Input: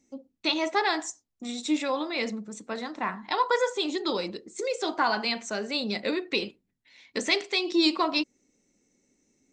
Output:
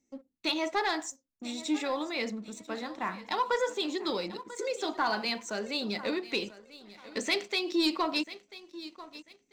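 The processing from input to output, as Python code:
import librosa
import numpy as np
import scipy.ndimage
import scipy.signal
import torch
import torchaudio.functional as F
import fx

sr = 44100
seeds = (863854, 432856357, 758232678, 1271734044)

p1 = x + fx.echo_feedback(x, sr, ms=991, feedback_pct=33, wet_db=-17.0, dry=0)
p2 = fx.leveller(p1, sr, passes=1)
y = F.gain(torch.from_numpy(p2), -7.0).numpy()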